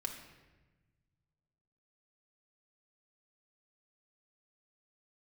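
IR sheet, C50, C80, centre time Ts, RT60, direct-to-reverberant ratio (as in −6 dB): 6.5 dB, 8.5 dB, 27 ms, 1.2 s, 0.5 dB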